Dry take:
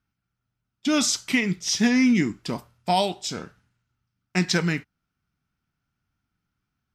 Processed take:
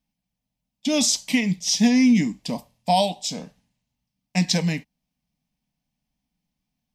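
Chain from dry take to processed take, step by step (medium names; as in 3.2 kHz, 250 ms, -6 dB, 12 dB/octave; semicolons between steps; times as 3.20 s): static phaser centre 370 Hz, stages 6; trim +3.5 dB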